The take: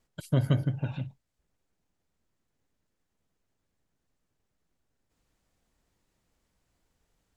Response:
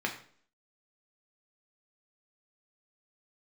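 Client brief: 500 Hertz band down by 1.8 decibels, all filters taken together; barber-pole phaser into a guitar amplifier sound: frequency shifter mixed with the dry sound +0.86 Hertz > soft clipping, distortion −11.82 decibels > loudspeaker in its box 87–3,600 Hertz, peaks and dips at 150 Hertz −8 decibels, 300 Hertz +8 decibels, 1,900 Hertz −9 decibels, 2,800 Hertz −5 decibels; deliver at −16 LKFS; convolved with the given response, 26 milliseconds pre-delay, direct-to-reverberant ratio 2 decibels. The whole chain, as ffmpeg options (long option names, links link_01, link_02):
-filter_complex "[0:a]equalizer=frequency=500:width_type=o:gain=-3,asplit=2[link_01][link_02];[1:a]atrim=start_sample=2205,adelay=26[link_03];[link_02][link_03]afir=irnorm=-1:irlink=0,volume=-9dB[link_04];[link_01][link_04]amix=inputs=2:normalize=0,asplit=2[link_05][link_06];[link_06]afreqshift=0.86[link_07];[link_05][link_07]amix=inputs=2:normalize=1,asoftclip=threshold=-23dB,highpass=87,equalizer=frequency=150:width_type=q:width=4:gain=-8,equalizer=frequency=300:width_type=q:width=4:gain=8,equalizer=frequency=1900:width_type=q:width=4:gain=-9,equalizer=frequency=2800:width_type=q:width=4:gain=-5,lowpass=frequency=3600:width=0.5412,lowpass=frequency=3600:width=1.3066,volume=21dB"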